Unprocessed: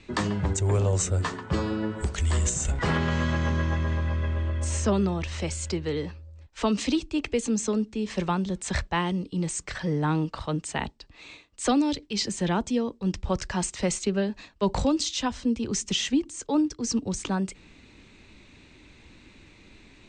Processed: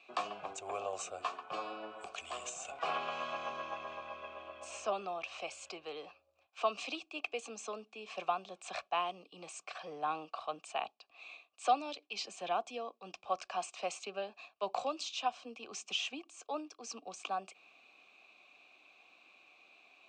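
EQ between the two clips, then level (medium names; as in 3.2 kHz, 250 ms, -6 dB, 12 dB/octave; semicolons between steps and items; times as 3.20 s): vowel filter a; high-pass 510 Hz 6 dB/octave; treble shelf 2.8 kHz +10 dB; +4.0 dB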